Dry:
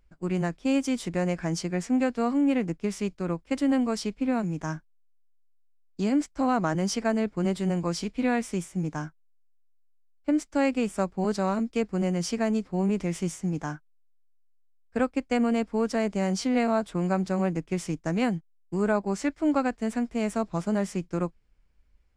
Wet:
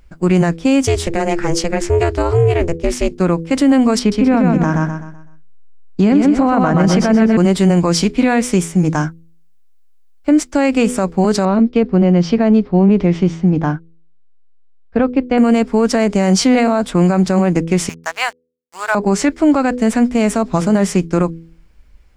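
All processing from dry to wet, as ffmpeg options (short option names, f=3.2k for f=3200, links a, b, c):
-filter_complex "[0:a]asettb=1/sr,asplit=3[a][b][c];[a]atrim=end=0.854[d];[b]atrim=start=0.85:end=3.2,asetpts=PTS-STARTPTS,afade=t=in:d=0.004:c=qsin,afade=t=out:st=2.346:d=0.004:c=qsin,bandreject=f=60:t=h:w=6,bandreject=f=120:t=h:w=6,bandreject=f=180:t=h:w=6,aeval=exprs='val(0)*sin(2*PI*170*n/s)':c=same[e];[c]atrim=start=3.196[f];[d][e]acrossfade=d=0.004:c1=hsin:c2=qsin[g];[g][f]acrossfade=d=0.004:c1=qsin:c2=hsin,asettb=1/sr,asplit=3[h][i][j];[h]atrim=end=3.994[k];[i]atrim=start=3.99:end=7.37,asetpts=PTS-STARTPTS,afade=t=in:d=0.004:c=qsin,afade=t=out:st=3.376:d=0.004:c=qsin,bass=f=250:g=3,treble=f=4k:g=-12,aecho=1:1:126|252|378|504|630:0.631|0.233|0.0864|0.032|0.0118,atrim=end_sample=149058[l];[j]atrim=start=7.366[m];[k][l]acrossfade=d=0.004:c1=hsin:c2=qsin[n];[n][m]acrossfade=d=0.004:c1=qsin:c2=hsin,asettb=1/sr,asplit=3[o][p][q];[o]atrim=end=11.454[r];[p]atrim=start=11.45:end=15.38,asetpts=PTS-STARTPTS,afade=t=in:d=0.004:c=qsin,afade=t=out:st=3.926:d=0.004:c=qsin,lowpass=f=4k:w=0.5412,lowpass=f=4k:w=1.3066,equalizer=f=2.1k:t=o:w=2.4:g=-6.5[s];[q]atrim=start=15.376[t];[r][s]acrossfade=d=0.004:c1=hsin:c2=qsin[u];[u][t]acrossfade=d=0.004:c1=qsin:c2=hsin,asettb=1/sr,asplit=3[v][w][x];[v]atrim=end=17.894[y];[w]atrim=start=17.89:end=18.95,asetpts=PTS-STARTPTS,afade=t=in:d=0.004:c=qsin,afade=t=out:st=1.056:d=0.004:c=qsin,highpass=f=820:w=0.5412,highpass=f=820:w=1.3066,acompressor=mode=upward:threshold=-49dB:ratio=2.5:attack=3.2:release=140:knee=2.83:detection=peak,aeval=exprs='sgn(val(0))*max(abs(val(0))-0.00355,0)':c=same[z];[x]atrim=start=18.946[aa];[y][z]acrossfade=d=0.004:c1=hsin:c2=qsin[ab];[ab][aa]acrossfade=d=0.004:c1=qsin:c2=hsin,bandreject=f=82.49:t=h:w=4,bandreject=f=164.98:t=h:w=4,bandreject=f=247.47:t=h:w=4,bandreject=f=329.96:t=h:w=4,bandreject=f=412.45:t=h:w=4,bandreject=f=494.94:t=h:w=4,alimiter=level_in=20.5dB:limit=-1dB:release=50:level=0:latency=1,volume=-3.5dB"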